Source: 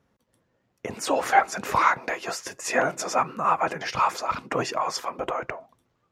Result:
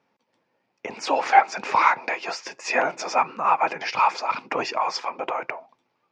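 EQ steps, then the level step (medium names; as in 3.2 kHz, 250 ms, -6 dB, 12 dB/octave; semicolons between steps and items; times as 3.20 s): cabinet simulation 230–6000 Hz, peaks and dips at 870 Hz +8 dB, 2.4 kHz +9 dB, 4.9 kHz +5 dB; -1.0 dB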